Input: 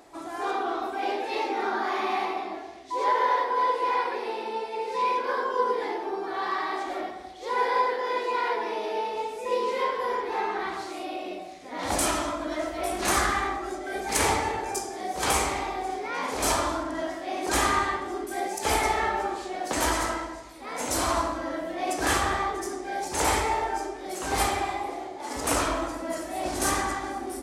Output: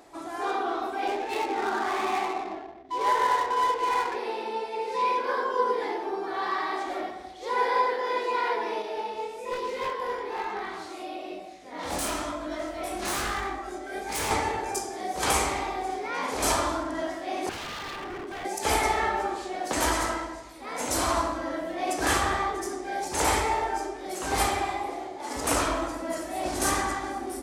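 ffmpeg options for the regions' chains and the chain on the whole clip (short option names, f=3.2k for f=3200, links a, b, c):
-filter_complex "[0:a]asettb=1/sr,asplit=3[a][b][c];[a]atrim=end=1.074[d];[b]atrim=start=1.07:end=4.16,asetpts=PTS-STARTPTS,afade=t=in:d=0.004:c=qsin,afade=t=out:st=3.086:d=0.004:c=qsin,highshelf=f=6k:g=5,bandreject=f=530:w=7.9,adynamicsmooth=sensitivity=7.5:basefreq=650[e];[c]atrim=start=4.156[f];[d][e]acrossfade=d=0.004:c1=hsin:c2=qsin[g];[g][f]acrossfade=d=0.004:c1=qsin:c2=hsin,asettb=1/sr,asplit=3[h][i][j];[h]atrim=end=8.824[k];[i]atrim=start=8.82:end=14.31,asetpts=PTS-STARTPTS,afade=t=in:d=0.004:c=qsin,afade=t=out:st=5.486:d=0.004:c=qsin,aeval=exprs='0.0891*(abs(mod(val(0)/0.0891+3,4)-2)-1)':c=same,flanger=delay=19.5:depth=5.9:speed=1.1[l];[j]atrim=start=14.306[m];[k][l]acrossfade=d=0.004:c1=hsin:c2=qsin[n];[n][m]acrossfade=d=0.004:c1=qsin:c2=hsin,asettb=1/sr,asplit=3[o][p][q];[o]atrim=end=17.494[r];[p]atrim=start=17.49:end=18.45,asetpts=PTS-STARTPTS,afade=t=in:d=0.004:c=qsin,afade=t=out:st=0.956:d=0.004:c=qsin,highpass=100,lowpass=3.2k,acompressor=threshold=-27dB:ratio=4:attack=3.2:release=140:knee=1:detection=peak,aeval=exprs='0.0266*(abs(mod(val(0)/0.0266+3,4)-2)-1)':c=same[s];[q]atrim=start=18.446[t];[r][s]acrossfade=d=0.004:c1=hsin:c2=qsin[u];[u][t]acrossfade=d=0.004:c1=qsin:c2=hsin"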